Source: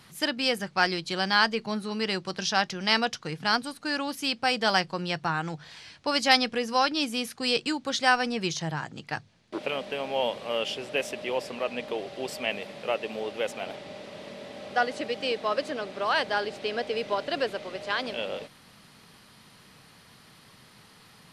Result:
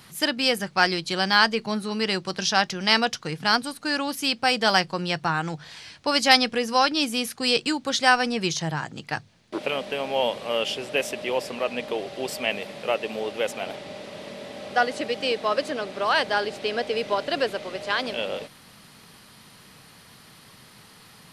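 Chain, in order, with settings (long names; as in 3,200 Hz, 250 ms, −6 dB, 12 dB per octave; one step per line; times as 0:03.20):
high-shelf EQ 10,000 Hz +7 dB
level +3.5 dB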